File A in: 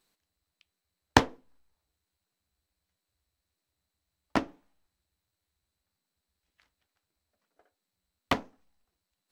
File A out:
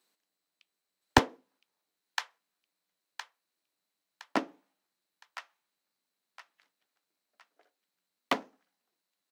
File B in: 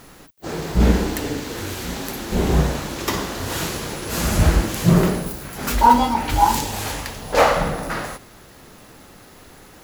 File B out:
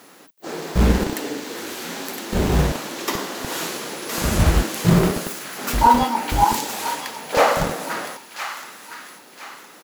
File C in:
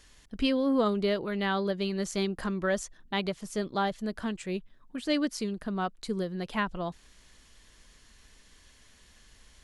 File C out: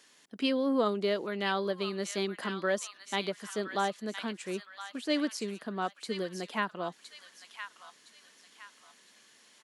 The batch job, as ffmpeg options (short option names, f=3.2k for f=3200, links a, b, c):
-filter_complex "[0:a]acrossover=split=190|1000[a][b][c];[a]acrusher=bits=3:mix=0:aa=0.000001[d];[c]aecho=1:1:1014|2028|3042|4056:0.447|0.161|0.0579|0.0208[e];[d][b][e]amix=inputs=3:normalize=0,volume=-1dB"